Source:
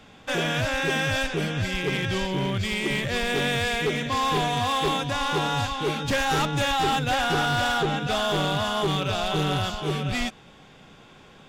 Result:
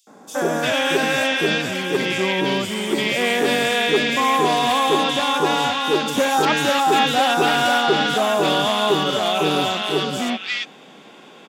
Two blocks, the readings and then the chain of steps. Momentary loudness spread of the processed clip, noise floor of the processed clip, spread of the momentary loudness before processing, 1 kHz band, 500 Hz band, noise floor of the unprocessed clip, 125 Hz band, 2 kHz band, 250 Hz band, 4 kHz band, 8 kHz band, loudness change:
6 LU, -45 dBFS, 4 LU, +7.0 dB, +8.0 dB, -50 dBFS, -4.5 dB, +5.5 dB, +6.0 dB, +6.5 dB, +6.0 dB, +6.0 dB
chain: high-pass 210 Hz 24 dB/octave; three bands offset in time highs, lows, mids 70/350 ms, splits 1.5/5.4 kHz; trim +8 dB

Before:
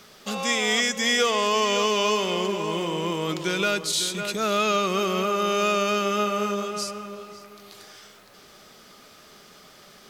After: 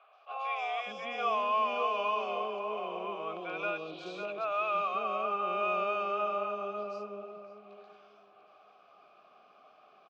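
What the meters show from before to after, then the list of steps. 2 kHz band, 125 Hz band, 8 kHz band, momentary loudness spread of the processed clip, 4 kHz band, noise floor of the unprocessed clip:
-11.5 dB, -21.0 dB, under -35 dB, 12 LU, -19.5 dB, -51 dBFS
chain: vowel filter a; distance through air 190 m; three bands offset in time mids, highs, lows 130/600 ms, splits 560/3500 Hz; attacks held to a fixed rise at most 370 dB/s; trim +5.5 dB

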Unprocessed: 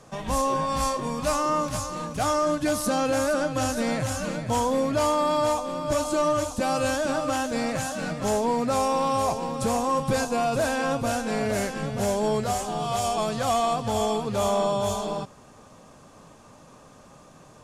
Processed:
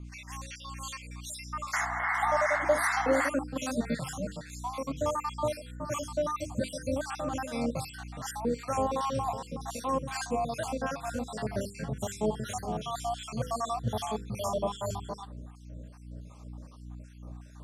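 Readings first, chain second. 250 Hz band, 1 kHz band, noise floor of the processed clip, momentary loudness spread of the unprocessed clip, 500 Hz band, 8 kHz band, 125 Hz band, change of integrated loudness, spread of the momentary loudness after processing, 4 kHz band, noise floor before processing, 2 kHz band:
-7.5 dB, -7.5 dB, -48 dBFS, 4 LU, -8.0 dB, -8.5 dB, -5.0 dB, -7.0 dB, 20 LU, -8.5 dB, -51 dBFS, -1.5 dB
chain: random holes in the spectrogram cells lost 58%; high-pass sweep 2.1 kHz -> 100 Hz, 1.28–4.32 s; painted sound noise, 1.73–3.29 s, 670–2200 Hz -26 dBFS; hum notches 50/100/150/200/250/300/350/400/450/500 Hz; hum 60 Hz, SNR 12 dB; harmonic tremolo 2.6 Hz, depth 70%, crossover 880 Hz; trim -1.5 dB

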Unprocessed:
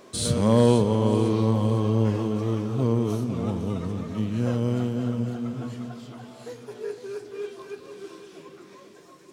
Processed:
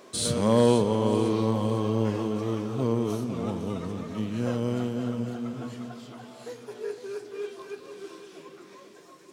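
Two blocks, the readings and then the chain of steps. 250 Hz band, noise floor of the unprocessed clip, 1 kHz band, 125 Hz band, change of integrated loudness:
-2.5 dB, -49 dBFS, 0.0 dB, -6.0 dB, -3.0 dB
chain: bass shelf 130 Hz -11 dB

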